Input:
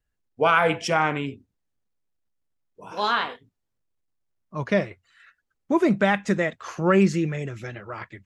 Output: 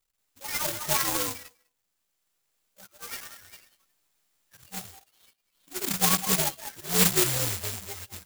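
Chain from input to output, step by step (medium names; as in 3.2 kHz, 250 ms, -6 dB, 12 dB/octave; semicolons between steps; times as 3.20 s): frequency axis rescaled in octaves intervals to 128%; 3.16–4.64 s: elliptic band-stop 110–1600 Hz, stop band 40 dB; slow attack 438 ms; loudest bins only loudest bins 8; flange 0.39 Hz, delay 9.3 ms, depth 2.9 ms, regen -5%; repeats whose band climbs or falls 200 ms, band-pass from 1.2 kHz, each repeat 1.4 oct, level -5 dB; careless resampling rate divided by 6×, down none, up zero stuff; sampling jitter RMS 0.035 ms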